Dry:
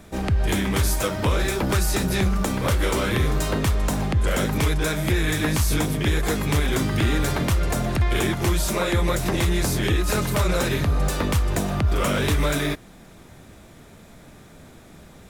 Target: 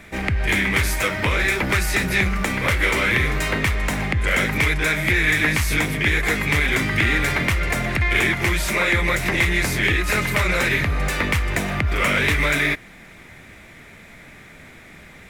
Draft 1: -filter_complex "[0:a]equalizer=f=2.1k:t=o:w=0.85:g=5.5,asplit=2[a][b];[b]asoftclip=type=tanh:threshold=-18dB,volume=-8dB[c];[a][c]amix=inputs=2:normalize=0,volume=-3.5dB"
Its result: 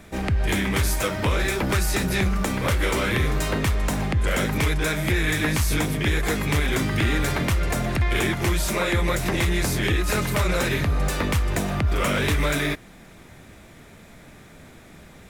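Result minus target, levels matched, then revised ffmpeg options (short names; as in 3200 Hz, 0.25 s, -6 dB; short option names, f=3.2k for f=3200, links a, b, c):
2000 Hz band -4.5 dB
-filter_complex "[0:a]equalizer=f=2.1k:t=o:w=0.85:g=16.5,asplit=2[a][b];[b]asoftclip=type=tanh:threshold=-18dB,volume=-8dB[c];[a][c]amix=inputs=2:normalize=0,volume=-3.5dB"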